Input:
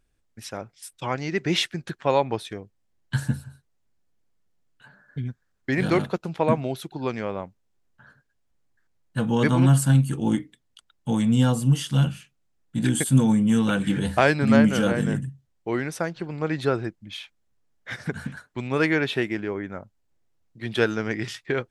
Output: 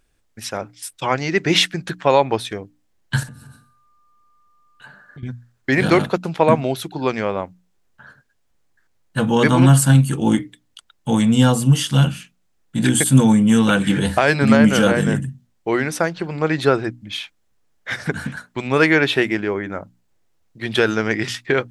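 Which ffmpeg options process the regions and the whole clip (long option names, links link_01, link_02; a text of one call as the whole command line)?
ffmpeg -i in.wav -filter_complex "[0:a]asettb=1/sr,asplit=3[link_01][link_02][link_03];[link_01]atrim=end=3.234[link_04];[link_02]atrim=start=3.23:end=5.23,asetpts=PTS-STARTPTS,afade=type=in:duration=0.004:curve=qsin,afade=type=out:start_time=1.996:duration=0.004:curve=qsin,aecho=1:1:63|126|189|252|315:0.178|0.0889|0.0445|0.0222|0.0111,atrim=end_sample=88200,acompressor=threshold=-42dB:ratio=6:attack=3.2:release=140:knee=1:detection=peak,aeval=exprs='val(0)+0.000447*sin(2*PI*1200*n/s)':channel_layout=same[link_05];[link_03]atrim=start=5.226[link_06];[link_04][link_05]acrossfade=duration=0.004:curve1=hsin:curve2=qsin[link_07];[link_07][link_06]acrossfade=duration=0.004:curve1=qsin:curve2=hsin,lowshelf=frequency=360:gain=-4,bandreject=frequency=60:width_type=h:width=6,bandreject=frequency=120:width_type=h:width=6,bandreject=frequency=180:width_type=h:width=6,bandreject=frequency=240:width_type=h:width=6,bandreject=frequency=300:width_type=h:width=6,alimiter=level_in=10dB:limit=-1dB:release=50:level=0:latency=1,volume=-1dB" out.wav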